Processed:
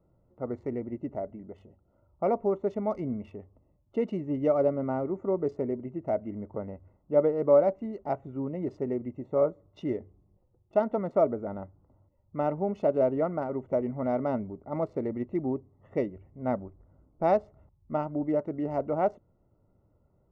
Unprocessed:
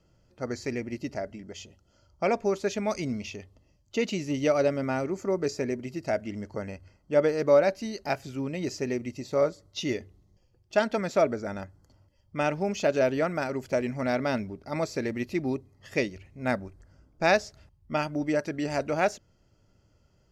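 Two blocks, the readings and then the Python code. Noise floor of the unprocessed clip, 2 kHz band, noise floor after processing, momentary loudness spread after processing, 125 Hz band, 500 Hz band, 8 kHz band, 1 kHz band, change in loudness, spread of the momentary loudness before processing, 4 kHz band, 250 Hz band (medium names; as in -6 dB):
-66 dBFS, -16.0 dB, -68 dBFS, 12 LU, -2.0 dB, -0.5 dB, under -30 dB, -1.5 dB, -1.0 dB, 13 LU, under -20 dB, -1.0 dB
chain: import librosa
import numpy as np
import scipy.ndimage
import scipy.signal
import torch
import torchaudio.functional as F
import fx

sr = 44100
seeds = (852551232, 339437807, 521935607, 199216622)

y = fx.wiener(x, sr, points=9)
y = scipy.signal.savgol_filter(y, 65, 4, mode='constant')
y = fx.low_shelf(y, sr, hz=130.0, db=-4.0)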